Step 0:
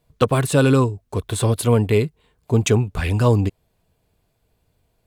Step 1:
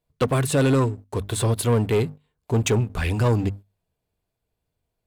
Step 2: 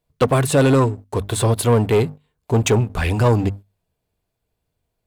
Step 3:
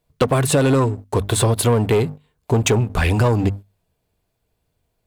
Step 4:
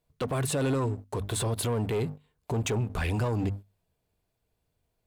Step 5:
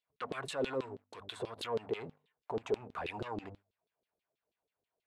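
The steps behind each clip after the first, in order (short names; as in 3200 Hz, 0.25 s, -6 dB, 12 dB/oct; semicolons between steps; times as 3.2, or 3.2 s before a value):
notches 50/100/150/200/250 Hz; sample leveller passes 2; gain -8.5 dB
dynamic EQ 750 Hz, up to +4 dB, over -37 dBFS, Q 1.1; gain +3.5 dB
compressor, threshold -18 dBFS, peak gain reduction 7.5 dB; gain +4.5 dB
limiter -15.5 dBFS, peak gain reduction 10 dB; gain -6.5 dB
LFO band-pass saw down 6.2 Hz 340–3800 Hz; gain +1 dB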